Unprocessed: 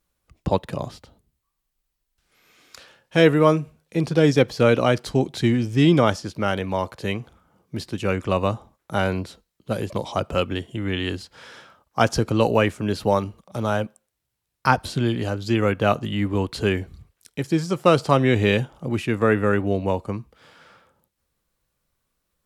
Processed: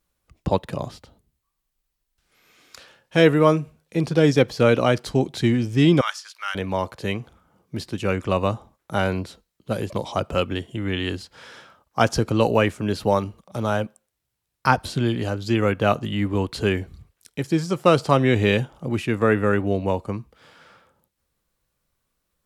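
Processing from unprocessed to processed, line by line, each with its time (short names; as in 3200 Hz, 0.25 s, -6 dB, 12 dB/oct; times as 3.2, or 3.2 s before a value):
6.01–6.55 HPF 1200 Hz 24 dB/oct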